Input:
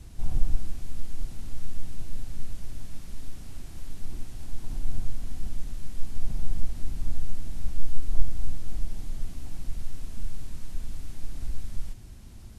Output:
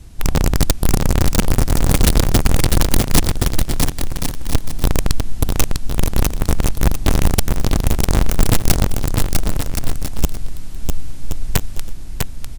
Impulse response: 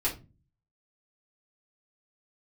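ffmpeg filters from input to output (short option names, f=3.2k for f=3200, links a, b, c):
-filter_complex "[0:a]asettb=1/sr,asplit=3[a][b][c];[a]atrim=end=0.804[d];[b]atrim=start=0.8:end=3.22,asetpts=PTS-STARTPTS,afade=t=in:d=0.004:c=qsin,afade=t=out:st=2.416:d=0.004:c=qsin,lowshelf=f=170:g=6.5[e];[c]atrim=start=3.216[f];[d][e]acrossfade=d=0.004:c1=hsin:c2=qsin[g];[g][f]acrossfade=d=0.004:c1=qsin:c2=hsin,aeval=exprs='(mod(5.96*val(0)+1,2)-1)/5.96':c=same,aecho=1:1:650|1072|1347|1526|1642:0.631|0.398|0.251|0.158|0.1,volume=6dB"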